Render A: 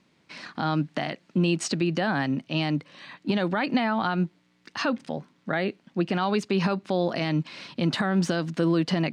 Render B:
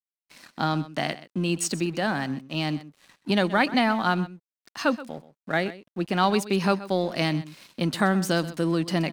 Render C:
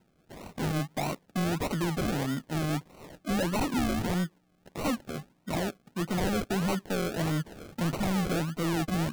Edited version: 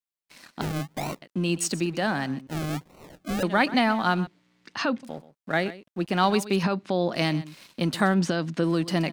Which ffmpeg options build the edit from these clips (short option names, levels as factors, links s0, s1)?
-filter_complex "[2:a]asplit=2[s0][s1];[0:a]asplit=3[s2][s3][s4];[1:a]asplit=6[s5][s6][s7][s8][s9][s10];[s5]atrim=end=0.612[s11];[s0]atrim=start=0.608:end=1.222[s12];[s6]atrim=start=1.218:end=2.472[s13];[s1]atrim=start=2.468:end=3.432[s14];[s7]atrim=start=3.428:end=4.272[s15];[s2]atrim=start=4.268:end=5.032[s16];[s8]atrim=start=5.028:end=6.632[s17];[s3]atrim=start=6.628:end=7.132[s18];[s9]atrim=start=7.128:end=8.142[s19];[s4]atrim=start=8.138:end=8.642[s20];[s10]atrim=start=8.638[s21];[s11][s12]acrossfade=d=0.004:c1=hsin:c2=hsin[s22];[s22][s13]acrossfade=d=0.004:c1=hsin:c2=hsin[s23];[s23][s14]acrossfade=d=0.004:c1=hsin:c2=hsin[s24];[s24][s15]acrossfade=d=0.004:c1=hsin:c2=hsin[s25];[s25][s16]acrossfade=d=0.004:c1=hsin:c2=hsin[s26];[s26][s17]acrossfade=d=0.004:c1=hsin:c2=hsin[s27];[s27][s18]acrossfade=d=0.004:c1=hsin:c2=hsin[s28];[s28][s19]acrossfade=d=0.004:c1=hsin:c2=hsin[s29];[s29][s20]acrossfade=d=0.004:c1=hsin:c2=hsin[s30];[s30][s21]acrossfade=d=0.004:c1=hsin:c2=hsin"